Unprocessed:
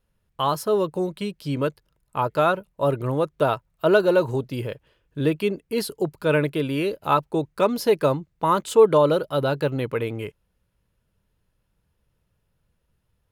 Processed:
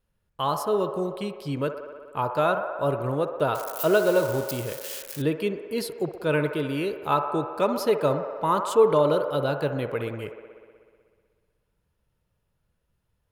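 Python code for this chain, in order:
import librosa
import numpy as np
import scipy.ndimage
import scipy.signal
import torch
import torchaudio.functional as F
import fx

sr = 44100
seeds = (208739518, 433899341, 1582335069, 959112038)

p1 = fx.crossing_spikes(x, sr, level_db=-21.0, at=(3.55, 5.22))
p2 = p1 + fx.echo_wet_bandpass(p1, sr, ms=62, feedback_pct=80, hz=900.0, wet_db=-8, dry=0)
y = p2 * 10.0 ** (-3.5 / 20.0)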